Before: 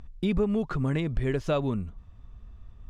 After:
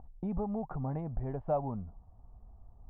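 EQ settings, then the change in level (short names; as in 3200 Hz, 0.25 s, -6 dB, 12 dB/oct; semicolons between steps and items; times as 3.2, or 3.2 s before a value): dynamic EQ 370 Hz, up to -8 dB, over -43 dBFS, Q 1.8; synth low-pass 790 Hz, resonance Q 6; air absorption 270 m; -7.5 dB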